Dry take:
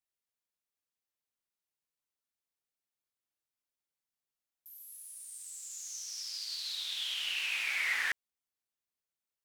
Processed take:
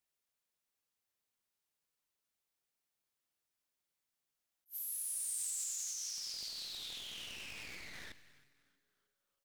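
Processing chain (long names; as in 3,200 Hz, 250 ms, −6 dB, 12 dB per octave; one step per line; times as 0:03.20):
wavefolder on the positive side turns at −34.5 dBFS
compressor whose output falls as the input rises −47 dBFS, ratio −1
echo with shifted repeats 317 ms, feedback 52%, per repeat −140 Hz, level −19 dB
four-comb reverb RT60 1.8 s, combs from 30 ms, DRR 16 dB
leveller curve on the samples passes 1
level that may rise only so fast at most 430 dB per second
level −1 dB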